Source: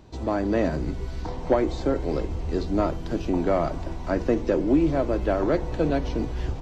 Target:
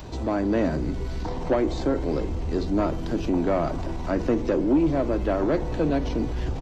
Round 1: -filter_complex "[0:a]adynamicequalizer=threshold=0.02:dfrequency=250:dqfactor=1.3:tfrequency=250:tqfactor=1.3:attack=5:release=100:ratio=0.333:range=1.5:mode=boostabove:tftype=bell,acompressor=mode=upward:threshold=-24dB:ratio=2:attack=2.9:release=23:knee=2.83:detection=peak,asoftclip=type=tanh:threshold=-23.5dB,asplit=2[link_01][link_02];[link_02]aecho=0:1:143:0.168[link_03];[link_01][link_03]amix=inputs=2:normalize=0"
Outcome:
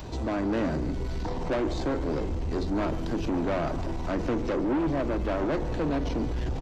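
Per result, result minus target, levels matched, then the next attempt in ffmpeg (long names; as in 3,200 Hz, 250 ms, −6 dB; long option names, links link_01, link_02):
soft clipping: distortion +10 dB; echo-to-direct +9.5 dB
-filter_complex "[0:a]adynamicequalizer=threshold=0.02:dfrequency=250:dqfactor=1.3:tfrequency=250:tqfactor=1.3:attack=5:release=100:ratio=0.333:range=1.5:mode=boostabove:tftype=bell,acompressor=mode=upward:threshold=-24dB:ratio=2:attack=2.9:release=23:knee=2.83:detection=peak,asoftclip=type=tanh:threshold=-13.5dB,asplit=2[link_01][link_02];[link_02]aecho=0:1:143:0.168[link_03];[link_01][link_03]amix=inputs=2:normalize=0"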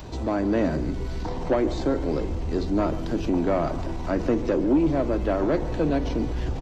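echo-to-direct +9.5 dB
-filter_complex "[0:a]adynamicequalizer=threshold=0.02:dfrequency=250:dqfactor=1.3:tfrequency=250:tqfactor=1.3:attack=5:release=100:ratio=0.333:range=1.5:mode=boostabove:tftype=bell,acompressor=mode=upward:threshold=-24dB:ratio=2:attack=2.9:release=23:knee=2.83:detection=peak,asoftclip=type=tanh:threshold=-13.5dB,asplit=2[link_01][link_02];[link_02]aecho=0:1:143:0.0562[link_03];[link_01][link_03]amix=inputs=2:normalize=0"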